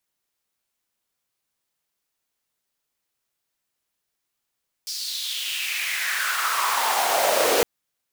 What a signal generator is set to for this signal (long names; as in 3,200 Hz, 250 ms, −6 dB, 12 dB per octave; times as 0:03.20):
filter sweep on noise pink, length 2.76 s highpass, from 5,100 Hz, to 450 Hz, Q 4.2, exponential, gain ramp +11 dB